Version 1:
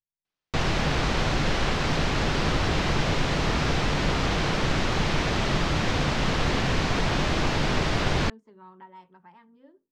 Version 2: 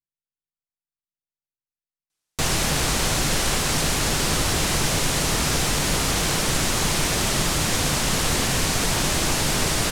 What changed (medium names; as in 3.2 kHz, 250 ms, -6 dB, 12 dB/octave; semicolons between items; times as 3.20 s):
background: entry +1.85 s; master: remove distance through air 210 m